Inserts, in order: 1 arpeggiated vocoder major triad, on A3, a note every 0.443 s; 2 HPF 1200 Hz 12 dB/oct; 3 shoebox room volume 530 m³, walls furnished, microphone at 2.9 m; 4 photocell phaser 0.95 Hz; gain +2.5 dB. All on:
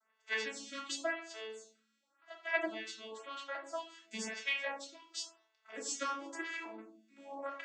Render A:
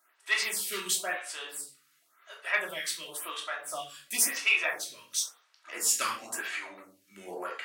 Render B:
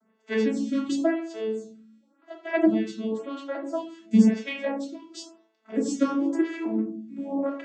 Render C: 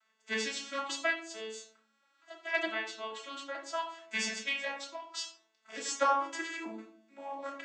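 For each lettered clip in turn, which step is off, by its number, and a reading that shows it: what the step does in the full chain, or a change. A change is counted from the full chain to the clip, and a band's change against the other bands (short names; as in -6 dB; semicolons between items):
1, 8 kHz band +11.0 dB; 2, 250 Hz band +25.5 dB; 4, 1 kHz band +5.0 dB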